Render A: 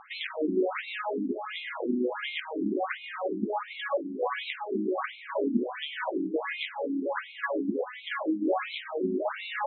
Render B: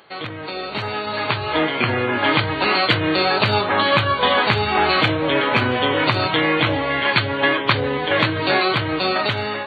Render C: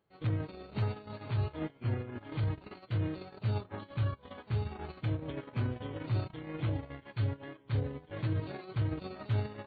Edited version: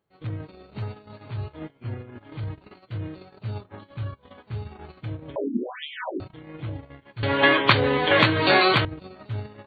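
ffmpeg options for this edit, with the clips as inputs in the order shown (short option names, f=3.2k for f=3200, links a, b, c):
-filter_complex "[2:a]asplit=3[a][b][c];[a]atrim=end=5.362[d];[0:a]atrim=start=5.358:end=6.202[e];[b]atrim=start=6.198:end=7.232[f];[1:a]atrim=start=7.228:end=8.852[g];[c]atrim=start=8.848[h];[d][e]acrossfade=d=0.004:c1=hsin:c2=hsin[i];[i][f]acrossfade=d=0.004:c1=hsin:c2=hsin[j];[j][g]acrossfade=d=0.004:c1=hsin:c2=hsin[k];[k][h]acrossfade=d=0.004:c1=hsin:c2=hsin"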